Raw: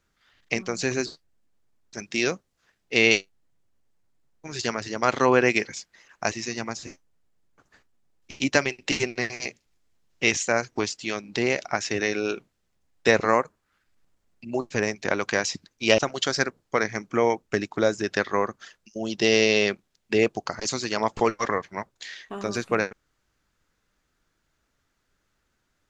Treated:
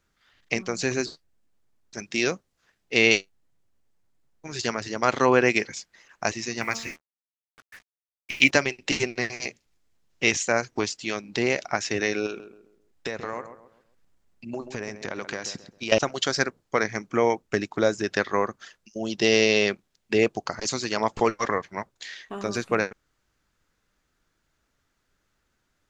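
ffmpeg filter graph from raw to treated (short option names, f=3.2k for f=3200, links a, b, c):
-filter_complex "[0:a]asettb=1/sr,asplit=3[a][b][c];[a]atrim=end=6.614[d];[b]atrim=start=6.61:end=8.51,asetpts=PTS-STARTPTS,afade=t=in:d=0.004:c=qsin,afade=t=out:st=1.896:d=0.004:c=qsin,equalizer=f=2.2k:w=1.1:g=15,bandreject=f=75.62:t=h:w=4,bandreject=f=151.24:t=h:w=4,bandreject=f=226.86:t=h:w=4,bandreject=f=302.48:t=h:w=4,bandreject=f=378.1:t=h:w=4,bandreject=f=453.72:t=h:w=4,bandreject=f=529.34:t=h:w=4,bandreject=f=604.96:t=h:w=4,bandreject=f=680.58:t=h:w=4,bandreject=f=756.2:t=h:w=4,bandreject=f=831.82:t=h:w=4,bandreject=f=907.44:t=h:w=4,bandreject=f=983.06:t=h:w=4,bandreject=f=1.05868k:t=h:w=4,bandreject=f=1.1343k:t=h:w=4,bandreject=f=1.20992k:t=h:w=4,bandreject=f=1.28554k:t=h:w=4,bandreject=f=1.36116k:t=h:w=4,acrusher=bits=7:mix=0:aa=0.5[e];[c]atrim=start=8.506[f];[d][e]acrossfade=d=0.004:c1=hsin:c2=qsin[g];[g][f]acrossfade=d=0.004:c1=qsin:c2=hsin,asettb=1/sr,asplit=3[h][i][j];[h]atrim=end=12.264[k];[i]atrim=start=12.26:end=15.92,asetpts=PTS-STARTPTS,afade=t=in:d=0.004:c=qsin,afade=t=out:st=3.656:d=0.004:c=qsin,acompressor=threshold=-28dB:ratio=5:attack=3.2:release=140:knee=1:detection=peak,asplit=2[l][m];[m]adelay=133,lowpass=f=1.3k:p=1,volume=-9.5dB,asplit=2[n][o];[o]adelay=133,lowpass=f=1.3k:p=1,volume=0.39,asplit=2[p][q];[q]adelay=133,lowpass=f=1.3k:p=1,volume=0.39,asplit=2[r][s];[s]adelay=133,lowpass=f=1.3k:p=1,volume=0.39[t];[l][n][p][r][t]amix=inputs=5:normalize=0,atrim=end_sample=161406[u];[j]atrim=start=15.916[v];[k][u]acrossfade=d=0.004:c1=hsin:c2=qsin[w];[w][v]acrossfade=d=0.004:c1=qsin:c2=hsin"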